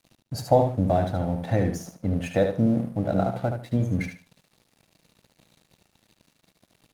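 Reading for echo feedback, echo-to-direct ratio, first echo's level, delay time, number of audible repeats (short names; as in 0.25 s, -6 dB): 22%, -6.5 dB, -6.5 dB, 74 ms, 3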